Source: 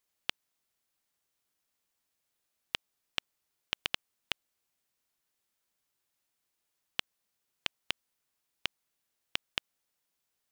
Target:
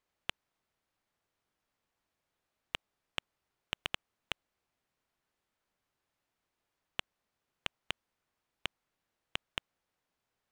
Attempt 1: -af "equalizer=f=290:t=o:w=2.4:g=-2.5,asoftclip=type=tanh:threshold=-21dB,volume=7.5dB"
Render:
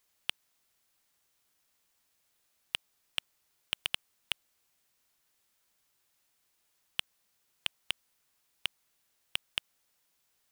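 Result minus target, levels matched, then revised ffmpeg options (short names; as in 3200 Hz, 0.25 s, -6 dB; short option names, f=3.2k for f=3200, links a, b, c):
1000 Hz band -7.5 dB
-af "lowpass=f=1.2k:p=1,equalizer=f=290:t=o:w=2.4:g=-2.5,asoftclip=type=tanh:threshold=-21dB,volume=7.5dB"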